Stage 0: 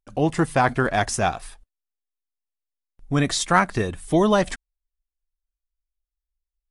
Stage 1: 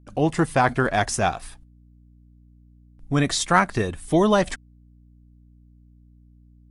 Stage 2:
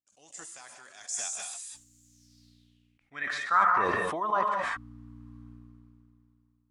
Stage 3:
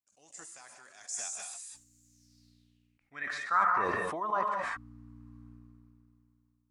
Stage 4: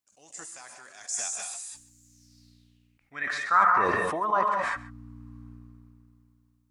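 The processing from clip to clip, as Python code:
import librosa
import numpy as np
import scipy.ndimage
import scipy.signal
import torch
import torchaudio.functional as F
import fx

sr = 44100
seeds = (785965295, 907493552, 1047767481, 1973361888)

y1 = fx.add_hum(x, sr, base_hz=60, snr_db=27)
y2 = fx.filter_sweep_bandpass(y1, sr, from_hz=7100.0, to_hz=1100.0, start_s=2.03, end_s=3.67, q=5.3)
y2 = fx.rev_gated(y2, sr, seeds[0], gate_ms=220, shape='rising', drr_db=6.0)
y2 = fx.sustainer(y2, sr, db_per_s=21.0)
y2 = F.gain(torch.from_numpy(y2), -1.0).numpy()
y3 = fx.peak_eq(y2, sr, hz=3300.0, db=-5.5, octaves=0.39)
y3 = F.gain(torch.from_numpy(y3), -3.5).numpy()
y4 = y3 + 10.0 ** (-19.5 / 20.0) * np.pad(y3, (int(135 * sr / 1000.0), 0))[:len(y3)]
y4 = F.gain(torch.from_numpy(y4), 6.0).numpy()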